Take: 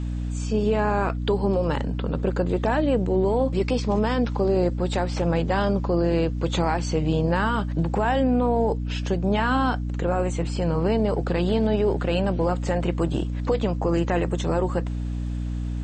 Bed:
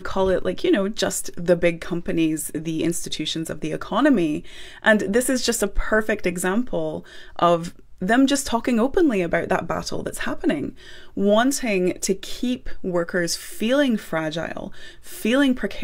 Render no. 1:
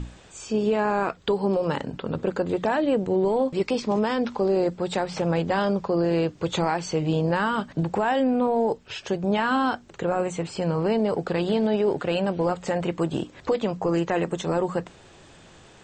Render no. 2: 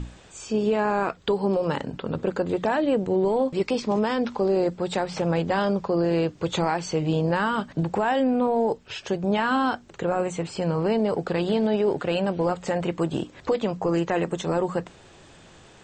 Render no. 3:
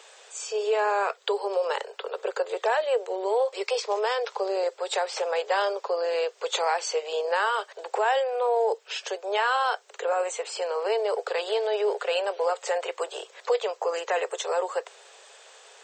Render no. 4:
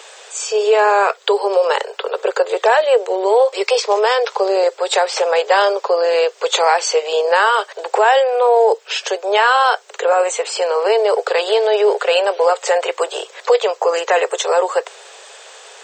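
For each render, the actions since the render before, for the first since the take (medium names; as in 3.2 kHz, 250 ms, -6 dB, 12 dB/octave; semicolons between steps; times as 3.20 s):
hum notches 60/120/180/240/300 Hz
no audible change
steep high-pass 410 Hz 96 dB/octave; treble shelf 4.2 kHz +6.5 dB
trim +11.5 dB; peak limiter -3 dBFS, peak gain reduction 1.5 dB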